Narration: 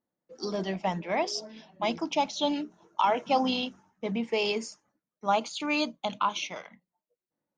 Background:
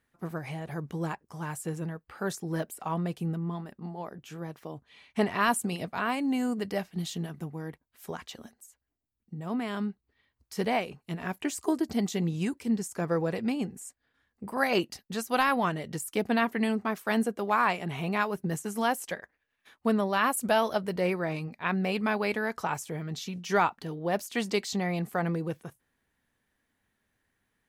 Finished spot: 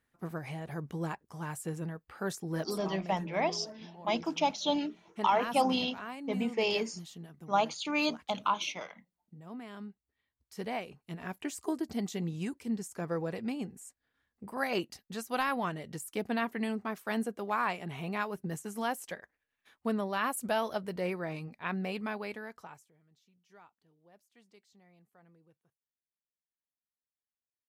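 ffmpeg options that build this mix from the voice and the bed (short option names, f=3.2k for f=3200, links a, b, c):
-filter_complex "[0:a]adelay=2250,volume=-2dB[a];[1:a]volume=3.5dB,afade=t=out:st=2.59:d=0.38:silence=0.334965,afade=t=in:st=10.17:d=1.08:silence=0.473151,afade=t=out:st=21.8:d=1.12:silence=0.0446684[b];[a][b]amix=inputs=2:normalize=0"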